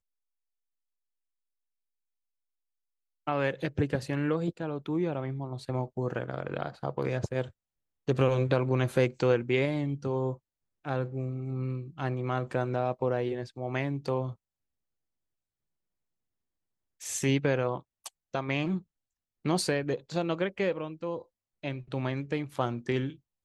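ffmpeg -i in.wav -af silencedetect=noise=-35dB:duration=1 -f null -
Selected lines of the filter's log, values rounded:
silence_start: 0.00
silence_end: 3.27 | silence_duration: 3.27
silence_start: 14.32
silence_end: 17.04 | silence_duration: 2.72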